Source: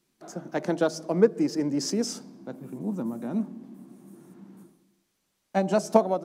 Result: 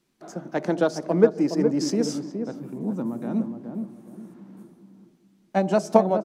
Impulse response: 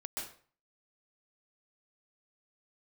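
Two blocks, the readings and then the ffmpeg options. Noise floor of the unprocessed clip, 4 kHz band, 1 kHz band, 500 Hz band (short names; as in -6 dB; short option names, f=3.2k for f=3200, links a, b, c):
-76 dBFS, -0.5 dB, +2.5 dB, +3.0 dB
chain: -filter_complex "[0:a]highshelf=f=5.4k:g=-6.5,asplit=2[a][b];[b]adelay=417,lowpass=f=850:p=1,volume=-5.5dB,asplit=2[c][d];[d]adelay=417,lowpass=f=850:p=1,volume=0.32,asplit=2[e][f];[f]adelay=417,lowpass=f=850:p=1,volume=0.32,asplit=2[g][h];[h]adelay=417,lowpass=f=850:p=1,volume=0.32[i];[c][e][g][i]amix=inputs=4:normalize=0[j];[a][j]amix=inputs=2:normalize=0,volume=2.5dB"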